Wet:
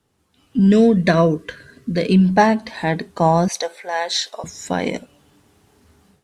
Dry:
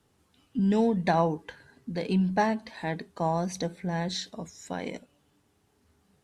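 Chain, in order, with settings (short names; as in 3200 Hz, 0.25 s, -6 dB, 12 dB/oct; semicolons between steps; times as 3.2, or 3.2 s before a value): 0.67–2.26 Butterworth band-stop 840 Hz, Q 2.3; AGC gain up to 13 dB; 3.48–4.44 HPF 530 Hz 24 dB/oct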